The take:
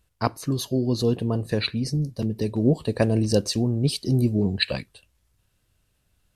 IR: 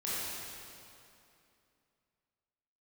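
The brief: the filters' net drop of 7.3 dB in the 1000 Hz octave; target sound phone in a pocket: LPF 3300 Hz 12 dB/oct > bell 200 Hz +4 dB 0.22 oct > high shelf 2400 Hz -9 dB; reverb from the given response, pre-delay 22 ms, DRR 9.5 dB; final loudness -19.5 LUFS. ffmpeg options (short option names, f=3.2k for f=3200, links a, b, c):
-filter_complex "[0:a]equalizer=f=1k:t=o:g=-9,asplit=2[a][b];[1:a]atrim=start_sample=2205,adelay=22[c];[b][c]afir=irnorm=-1:irlink=0,volume=-15dB[d];[a][d]amix=inputs=2:normalize=0,lowpass=3.3k,equalizer=f=200:t=o:w=0.22:g=4,highshelf=f=2.4k:g=-9,volume=5dB"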